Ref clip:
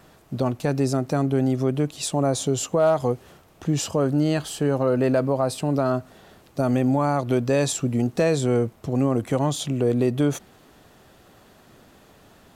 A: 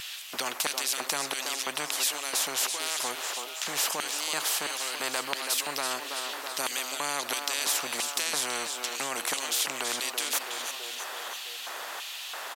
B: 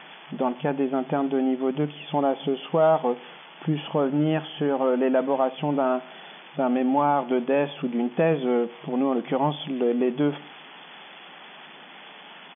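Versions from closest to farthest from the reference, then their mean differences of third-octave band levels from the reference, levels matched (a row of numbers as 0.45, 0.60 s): B, A; 9.0, 19.5 dB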